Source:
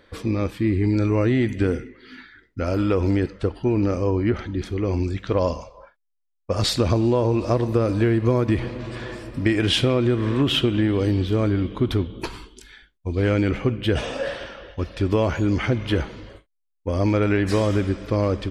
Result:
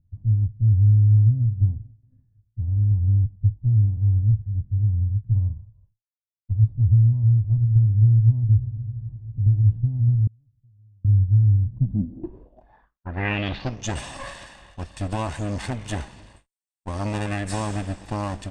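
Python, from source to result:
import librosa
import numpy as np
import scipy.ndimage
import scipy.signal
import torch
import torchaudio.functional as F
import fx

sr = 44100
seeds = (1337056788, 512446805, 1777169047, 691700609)

y = fx.lower_of_two(x, sr, delay_ms=1.1)
y = fx.filter_sweep_lowpass(y, sr, from_hz=110.0, to_hz=8600.0, start_s=11.66, end_s=13.98, q=5.9)
y = fx.gate_flip(y, sr, shuts_db=-24.0, range_db=-36, at=(10.27, 11.05))
y = F.gain(torch.from_numpy(y), -6.0).numpy()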